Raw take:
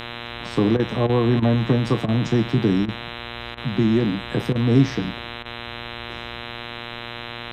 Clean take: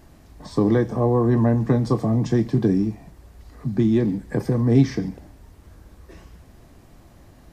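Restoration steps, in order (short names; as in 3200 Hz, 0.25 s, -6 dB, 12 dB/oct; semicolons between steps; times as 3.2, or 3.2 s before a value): de-hum 118.6 Hz, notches 34; interpolate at 0.77/1.07/1.4/2.06/2.86/3.55/4.53/5.43, 22 ms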